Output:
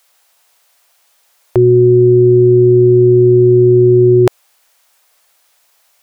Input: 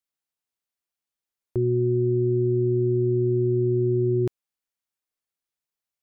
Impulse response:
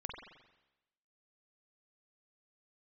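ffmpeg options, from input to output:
-af "lowshelf=f=420:t=q:w=1.5:g=-12.5,alimiter=level_in=34.5dB:limit=-1dB:release=50:level=0:latency=1,volume=-1dB"

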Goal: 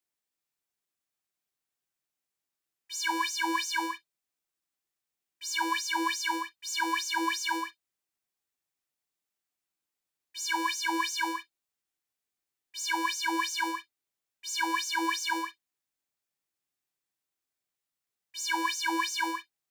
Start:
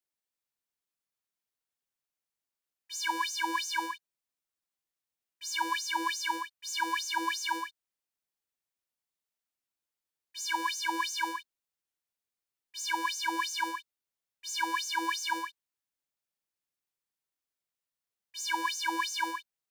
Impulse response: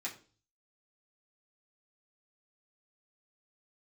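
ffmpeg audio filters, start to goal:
-filter_complex "[0:a]asplit=2[a][b];[1:a]atrim=start_sample=2205,atrim=end_sample=3087,lowshelf=f=290:g=11[c];[b][c]afir=irnorm=-1:irlink=0,volume=-7.5dB[d];[a][d]amix=inputs=2:normalize=0"

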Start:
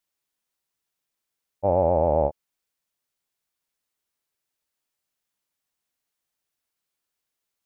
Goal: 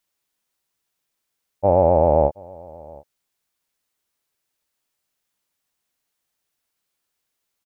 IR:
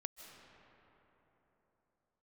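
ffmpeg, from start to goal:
-af "aecho=1:1:723:0.0631,volume=5dB"

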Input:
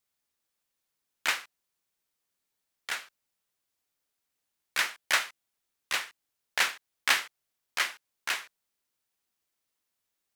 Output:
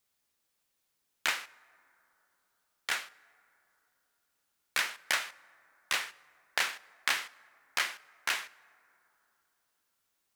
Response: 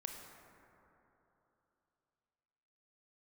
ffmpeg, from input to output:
-filter_complex "[0:a]acompressor=threshold=-30dB:ratio=5,asplit=2[a][b];[1:a]atrim=start_sample=2205,adelay=38[c];[b][c]afir=irnorm=-1:irlink=0,volume=-16dB[d];[a][d]amix=inputs=2:normalize=0,volume=3.5dB"

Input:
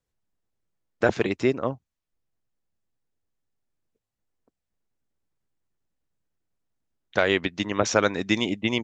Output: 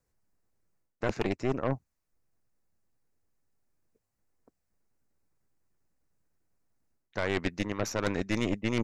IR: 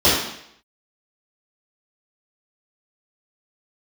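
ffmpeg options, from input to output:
-af "equalizer=f=3.3k:w=2.8:g=-11.5,areverse,acompressor=threshold=-29dB:ratio=20,areverse,aeval=exprs='0.0944*(cos(1*acos(clip(val(0)/0.0944,-1,1)))-cos(1*PI/2))+0.0266*(cos(4*acos(clip(val(0)/0.0944,-1,1)))-cos(4*PI/2))+0.0106*(cos(5*acos(clip(val(0)/0.0944,-1,1)))-cos(5*PI/2))+0.0015*(cos(7*acos(clip(val(0)/0.0944,-1,1)))-cos(7*PI/2))':c=same,volume=1dB"

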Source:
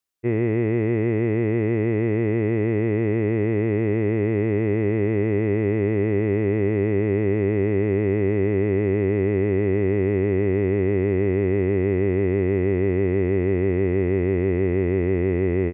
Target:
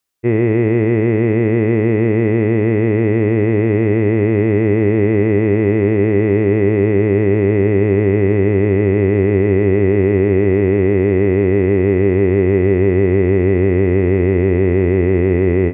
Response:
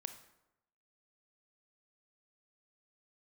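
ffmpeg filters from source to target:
-filter_complex "[0:a]asplit=2[a][b];[1:a]atrim=start_sample=2205,afade=t=out:st=0.2:d=0.01,atrim=end_sample=9261[c];[b][c]afir=irnorm=-1:irlink=0,volume=6dB[d];[a][d]amix=inputs=2:normalize=0"

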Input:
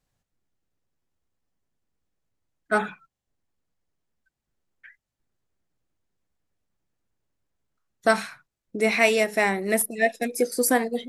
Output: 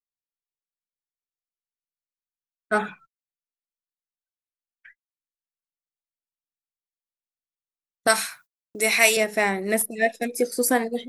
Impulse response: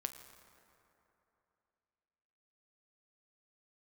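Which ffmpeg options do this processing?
-filter_complex "[0:a]asettb=1/sr,asplit=3[a][b][c];[a]atrim=end=8.074[d];[b]atrim=start=8.07:end=9.17,asetpts=PTS-STARTPTS,afade=t=in:d=0.004:c=qsin,afade=t=out:st=1.096:d=0.004:c=qsin,aemphasis=mode=production:type=riaa[e];[c]atrim=start=9.166[f];[d][e]acrossfade=d=0.004:c1=hsin:c2=qsin[g];[g][f]acrossfade=d=0.004:c1=qsin:c2=hsin,agate=range=-34dB:threshold=-49dB:ratio=16:detection=peak"

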